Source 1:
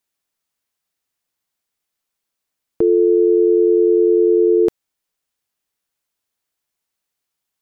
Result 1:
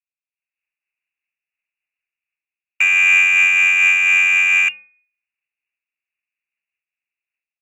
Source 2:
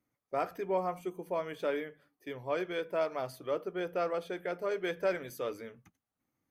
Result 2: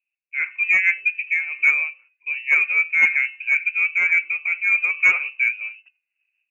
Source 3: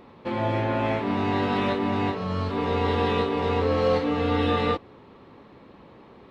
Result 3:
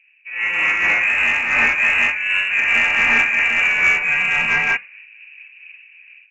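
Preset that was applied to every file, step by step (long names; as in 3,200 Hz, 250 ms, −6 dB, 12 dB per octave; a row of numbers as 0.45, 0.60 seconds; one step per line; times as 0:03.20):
hum removal 325.3 Hz, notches 31
low-pass that shuts in the quiet parts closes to 370 Hz, open at −13.5 dBFS
low-shelf EQ 290 Hz −8 dB
automatic gain control gain up to 15 dB
asymmetric clip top −14.5 dBFS, bottom −4.5 dBFS
voice inversion scrambler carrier 2,800 Hz
soft clipping −6 dBFS
amplitude modulation by smooth noise, depth 55%
normalise the peak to −6 dBFS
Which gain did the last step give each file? +2.0, +7.0, +2.0 decibels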